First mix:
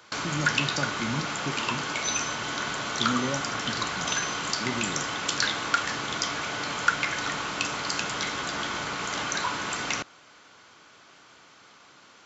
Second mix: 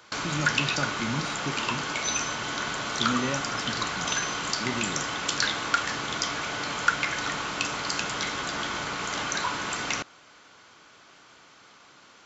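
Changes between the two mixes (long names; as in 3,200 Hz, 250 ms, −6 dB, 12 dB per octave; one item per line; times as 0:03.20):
speech: remove low-pass filter 1,400 Hz
master: remove high-pass filter 47 Hz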